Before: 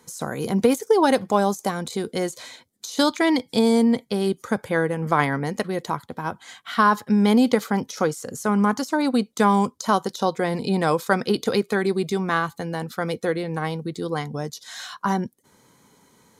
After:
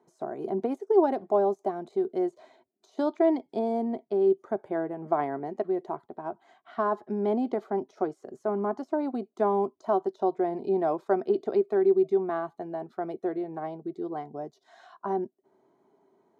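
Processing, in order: double band-pass 500 Hz, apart 0.76 oct; gain +3 dB

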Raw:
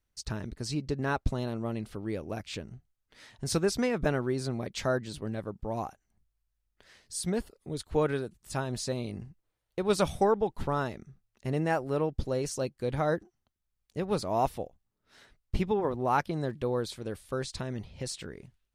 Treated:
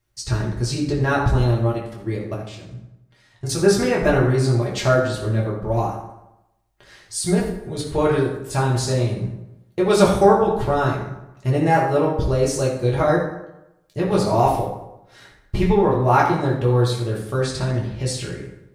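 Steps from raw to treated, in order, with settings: 1.72–3.59 level quantiser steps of 17 dB; reverb RT60 0.90 s, pre-delay 4 ms, DRR -4.5 dB; gain +5.5 dB

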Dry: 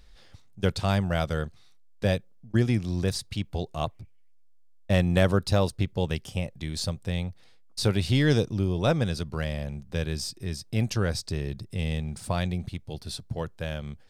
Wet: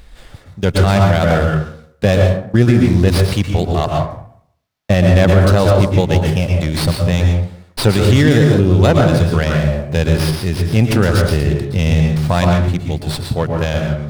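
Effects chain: plate-style reverb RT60 0.62 s, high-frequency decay 0.45×, pre-delay 0.105 s, DRR 2 dB; maximiser +15 dB; running maximum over 5 samples; gain -1 dB

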